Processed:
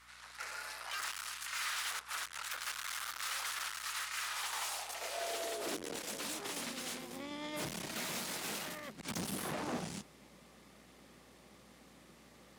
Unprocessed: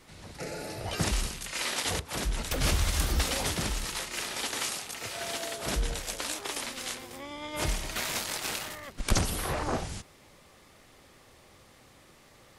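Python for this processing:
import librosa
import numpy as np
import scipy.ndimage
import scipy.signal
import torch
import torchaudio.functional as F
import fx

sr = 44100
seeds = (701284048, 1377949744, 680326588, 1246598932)

y = fx.tube_stage(x, sr, drive_db=37.0, bias=0.75)
y = fx.filter_sweep_highpass(y, sr, from_hz=1300.0, to_hz=190.0, start_s=4.21, end_s=6.35, q=2.4)
y = fx.add_hum(y, sr, base_hz=60, snr_db=29)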